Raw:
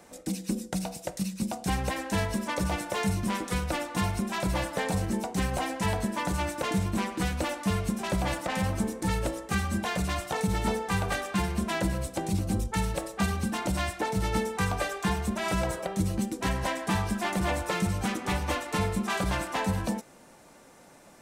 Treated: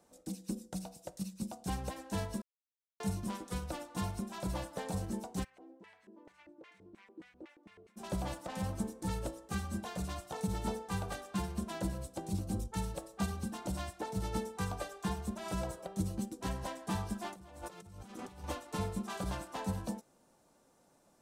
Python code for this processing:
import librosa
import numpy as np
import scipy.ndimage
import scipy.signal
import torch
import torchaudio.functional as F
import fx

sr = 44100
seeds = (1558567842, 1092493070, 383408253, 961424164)

y = fx.filter_lfo_bandpass(x, sr, shape='square', hz=fx.line((5.43, 1.7), (7.96, 5.6)), low_hz=360.0, high_hz=2100.0, q=3.9, at=(5.43, 7.96), fade=0.02)
y = fx.over_compress(y, sr, threshold_db=-37.0, ratio=-1.0, at=(17.31, 18.44))
y = fx.edit(y, sr, fx.silence(start_s=2.42, length_s=0.58), tone=tone)
y = fx.peak_eq(y, sr, hz=2100.0, db=-8.0, octaves=0.94)
y = fx.upward_expand(y, sr, threshold_db=-38.0, expansion=1.5)
y = y * librosa.db_to_amplitude(-6.0)